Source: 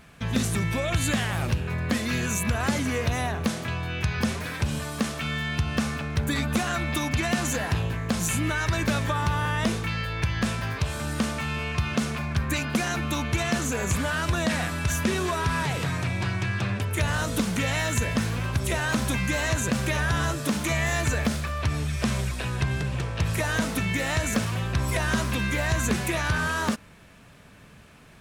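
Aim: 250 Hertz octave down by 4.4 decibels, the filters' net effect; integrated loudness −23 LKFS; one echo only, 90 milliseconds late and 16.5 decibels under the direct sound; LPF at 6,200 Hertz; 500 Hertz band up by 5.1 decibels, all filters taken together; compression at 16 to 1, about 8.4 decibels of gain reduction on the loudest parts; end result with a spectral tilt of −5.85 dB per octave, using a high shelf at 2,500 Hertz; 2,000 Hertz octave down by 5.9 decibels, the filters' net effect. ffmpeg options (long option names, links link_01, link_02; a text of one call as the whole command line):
ffmpeg -i in.wav -af "lowpass=6200,equalizer=frequency=250:width_type=o:gain=-8,equalizer=frequency=500:width_type=o:gain=9,equalizer=frequency=2000:width_type=o:gain=-6,highshelf=frequency=2500:gain=-5,acompressor=threshold=-29dB:ratio=16,aecho=1:1:90:0.15,volume=11dB" out.wav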